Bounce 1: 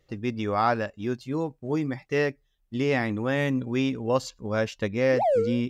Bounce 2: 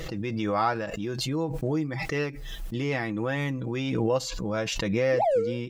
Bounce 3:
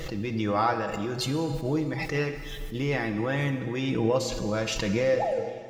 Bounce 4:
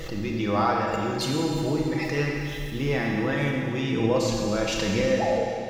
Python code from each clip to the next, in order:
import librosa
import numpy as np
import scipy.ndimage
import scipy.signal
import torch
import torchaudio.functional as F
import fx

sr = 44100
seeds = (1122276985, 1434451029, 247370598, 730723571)

y1 = x + 0.56 * np.pad(x, (int(6.1 * sr / 1000.0), 0))[:len(x)]
y1 = fx.pre_swell(y1, sr, db_per_s=23.0)
y1 = y1 * librosa.db_to_amplitude(-4.0)
y2 = fx.fade_out_tail(y1, sr, length_s=0.76)
y2 = fx.rev_plate(y2, sr, seeds[0], rt60_s=2.1, hf_ratio=0.95, predelay_ms=0, drr_db=7.0)
y2 = fx.attack_slew(y2, sr, db_per_s=160.0)
y3 = fx.rev_schroeder(y2, sr, rt60_s=2.3, comb_ms=27, drr_db=0.5)